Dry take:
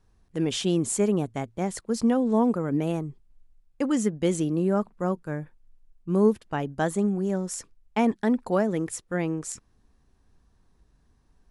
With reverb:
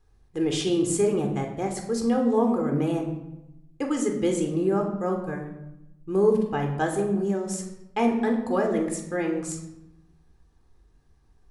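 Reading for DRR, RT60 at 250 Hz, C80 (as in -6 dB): 2.5 dB, 1.2 s, 9.0 dB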